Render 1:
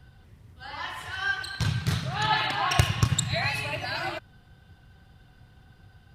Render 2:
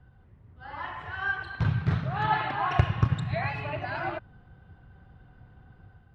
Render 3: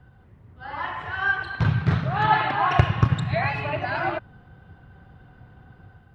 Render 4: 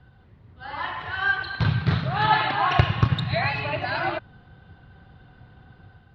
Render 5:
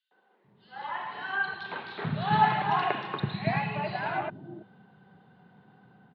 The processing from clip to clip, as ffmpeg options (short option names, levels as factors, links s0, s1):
-af "lowpass=1600,dynaudnorm=f=420:g=3:m=1.78,volume=0.668"
-af "lowshelf=f=63:g=-9,volume=2.11"
-af "lowpass=f=4200:t=q:w=2.9,volume=0.891"
-filter_complex "[0:a]highpass=f=150:w=0.5412,highpass=f=150:w=1.3066,equalizer=f=200:t=q:w=4:g=9,equalizer=f=410:t=q:w=4:g=7,equalizer=f=870:t=q:w=4:g=5,equalizer=f=1300:t=q:w=4:g=-3,lowpass=f=4200:w=0.5412,lowpass=f=4200:w=1.3066,acrossover=split=350|3100[s0][s1][s2];[s1]adelay=110[s3];[s0]adelay=440[s4];[s4][s3][s2]amix=inputs=3:normalize=0,volume=0.531"